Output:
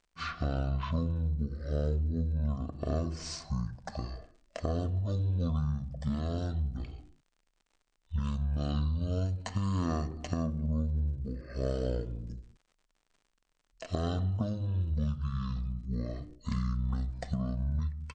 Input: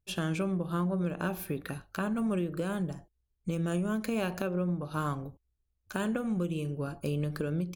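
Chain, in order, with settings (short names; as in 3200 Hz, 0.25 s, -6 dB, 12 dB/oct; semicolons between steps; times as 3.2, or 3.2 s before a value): crackle 190/s -59 dBFS; speed mistake 78 rpm record played at 33 rpm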